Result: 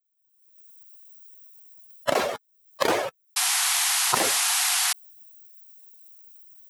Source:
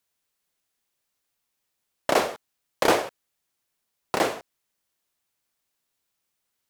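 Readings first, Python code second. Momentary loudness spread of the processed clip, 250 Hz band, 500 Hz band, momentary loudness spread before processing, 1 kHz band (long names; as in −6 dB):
10 LU, −3.5 dB, −2.0 dB, 16 LU, +0.5 dB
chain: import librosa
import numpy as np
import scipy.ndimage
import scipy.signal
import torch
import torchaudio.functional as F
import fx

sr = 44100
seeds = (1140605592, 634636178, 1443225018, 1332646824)

y = fx.bin_expand(x, sr, power=2.0)
y = fx.recorder_agc(y, sr, target_db=-17.0, rise_db_per_s=45.0, max_gain_db=30)
y = scipy.signal.sosfilt(scipy.signal.butter(2, 70.0, 'highpass', fs=sr, output='sos'), y)
y = fx.spec_paint(y, sr, seeds[0], shape='noise', start_s=3.36, length_s=1.57, low_hz=690.0, high_hz=12000.0, level_db=-27.0)
y = fx.env_flatten(y, sr, amount_pct=70)
y = F.gain(torch.from_numpy(y), -3.5).numpy()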